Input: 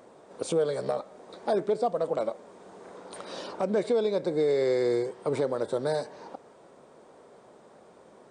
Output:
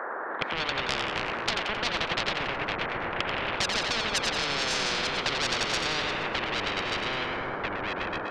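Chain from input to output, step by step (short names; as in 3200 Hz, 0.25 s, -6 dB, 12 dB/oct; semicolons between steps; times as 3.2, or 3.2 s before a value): high-pass sweep 1100 Hz -> 460 Hz, 0.97–4.94; Chebyshev band-pass 170–1700 Hz, order 4; in parallel at +2 dB: compressor 8:1, threshold -32 dBFS, peak gain reduction 14.5 dB; on the sum: small resonant body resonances 530/1400 Hz, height 8 dB, ringing for 20 ms; soft clip -20.5 dBFS, distortion -6 dB; split-band echo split 590 Hz, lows 0.288 s, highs 88 ms, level -7.5 dB; echoes that change speed 99 ms, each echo -3 st, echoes 2, each echo -6 dB; spectral compressor 10:1; gain +2.5 dB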